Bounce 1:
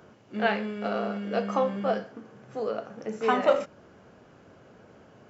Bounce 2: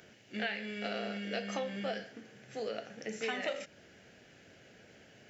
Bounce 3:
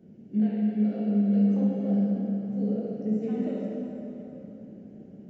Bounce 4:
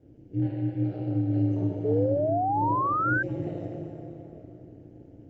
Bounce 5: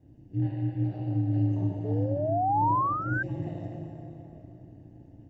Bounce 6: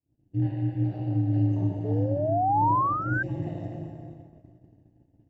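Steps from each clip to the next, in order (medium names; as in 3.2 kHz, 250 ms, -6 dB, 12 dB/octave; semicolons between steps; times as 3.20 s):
FFT filter 740 Hz 0 dB, 1.1 kHz -10 dB, 1.8 kHz +12 dB; compression 6:1, threshold -26 dBFS, peak gain reduction 11 dB; trim -6.5 dB
FFT filter 120 Hz 0 dB, 190 Hz +15 dB, 1.6 kHz -24 dB; plate-style reverb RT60 3.6 s, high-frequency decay 0.7×, DRR -5.5 dB
ring modulator 93 Hz; painted sound rise, 1.84–3.23 s, 420–1600 Hz -26 dBFS
comb 1.1 ms, depth 60%; trim -2.5 dB
expander -39 dBFS; trim +2 dB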